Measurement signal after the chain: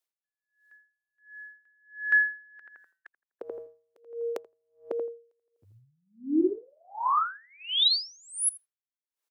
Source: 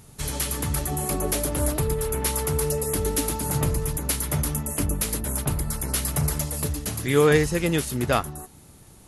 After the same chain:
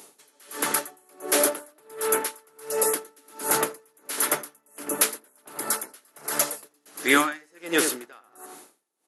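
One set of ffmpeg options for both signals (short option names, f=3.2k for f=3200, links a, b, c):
-filter_complex "[0:a]highpass=f=310:w=0.5412,highpass=f=310:w=1.3066,afftfilt=real='re*lt(hypot(re,im),0.631)':imag='im*lt(hypot(re,im),0.631)':win_size=1024:overlap=0.75,adynamicequalizer=threshold=0.00501:dfrequency=1500:dqfactor=1.9:tfrequency=1500:tqfactor=1.9:attack=5:release=100:ratio=0.375:range=3.5:mode=boostabove:tftype=bell,asplit=2[a][b];[b]adelay=83,lowpass=f=1.4k:p=1,volume=-9dB,asplit=2[c][d];[d]adelay=83,lowpass=f=1.4k:p=1,volume=0.34,asplit=2[e][f];[f]adelay=83,lowpass=f=1.4k:p=1,volume=0.34,asplit=2[g][h];[h]adelay=83,lowpass=f=1.4k:p=1,volume=0.34[i];[a][c][e][g][i]amix=inputs=5:normalize=0,aeval=exprs='val(0)*pow(10,-38*(0.5-0.5*cos(2*PI*1.4*n/s))/20)':c=same,volume=7.5dB"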